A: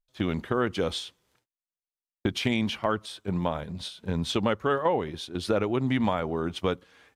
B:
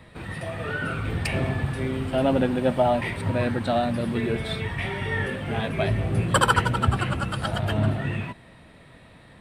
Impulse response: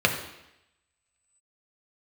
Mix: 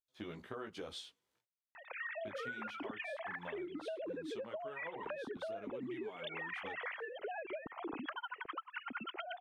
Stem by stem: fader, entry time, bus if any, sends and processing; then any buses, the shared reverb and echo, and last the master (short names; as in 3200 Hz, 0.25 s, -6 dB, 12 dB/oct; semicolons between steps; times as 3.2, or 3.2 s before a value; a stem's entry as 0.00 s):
-10.0 dB, 0.00 s, no send, HPF 200 Hz 6 dB/oct; chorus voices 2, 1.1 Hz, delay 16 ms, depth 3 ms
+2.0 dB, 1.75 s, no send, sine-wave speech; reverb removal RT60 1.9 s; compressor 4:1, threshold -33 dBFS, peak gain reduction 18.5 dB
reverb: off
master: compressor 6:1, threshold -41 dBFS, peak gain reduction 15 dB